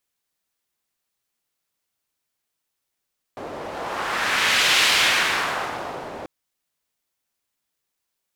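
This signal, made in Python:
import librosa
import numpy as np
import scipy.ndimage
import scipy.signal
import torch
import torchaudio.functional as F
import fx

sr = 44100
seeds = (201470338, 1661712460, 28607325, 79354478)

y = fx.wind(sr, seeds[0], length_s=2.89, low_hz=570.0, high_hz=2900.0, q=1.2, gusts=1, swing_db=17)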